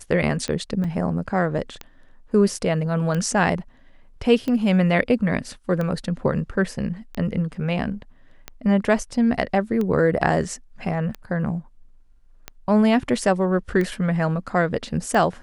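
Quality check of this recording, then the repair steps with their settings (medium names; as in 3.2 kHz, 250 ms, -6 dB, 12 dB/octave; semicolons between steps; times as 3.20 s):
tick 45 rpm -15 dBFS
0.84 s: dropout 4.5 ms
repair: de-click; interpolate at 0.84 s, 4.5 ms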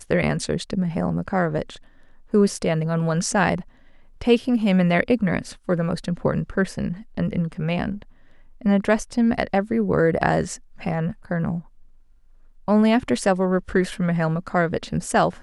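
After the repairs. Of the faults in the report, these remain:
nothing left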